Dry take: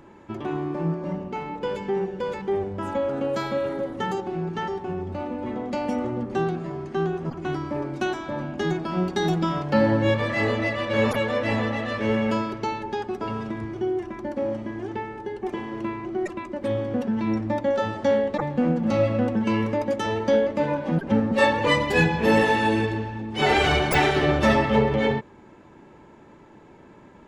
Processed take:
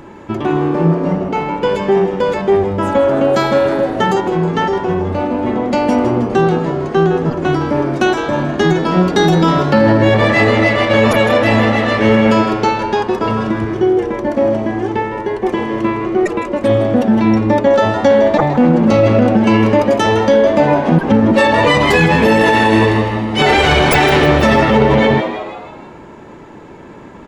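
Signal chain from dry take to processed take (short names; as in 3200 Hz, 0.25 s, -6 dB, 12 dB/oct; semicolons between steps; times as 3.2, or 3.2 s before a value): frequency-shifting echo 0.159 s, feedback 51%, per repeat +100 Hz, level -11.5 dB; maximiser +14 dB; gain -1 dB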